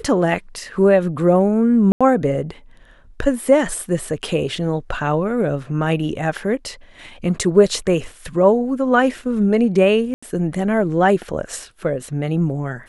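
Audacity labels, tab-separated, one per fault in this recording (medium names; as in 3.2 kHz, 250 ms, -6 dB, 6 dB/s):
1.920000	2.010000	dropout 86 ms
10.140000	10.220000	dropout 85 ms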